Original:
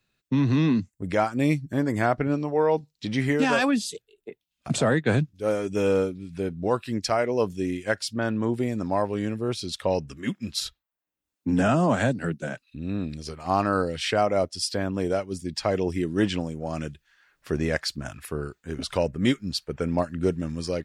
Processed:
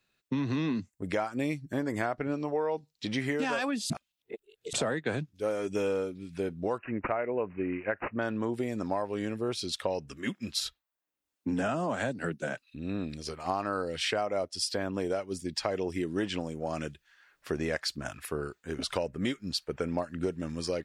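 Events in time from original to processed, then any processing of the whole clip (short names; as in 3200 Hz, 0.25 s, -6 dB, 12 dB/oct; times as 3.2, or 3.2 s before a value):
3.9–4.73 reverse
6.78–8.19 careless resampling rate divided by 8×, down none, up filtered
whole clip: tone controls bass -7 dB, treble -1 dB; compressor, threshold -27 dBFS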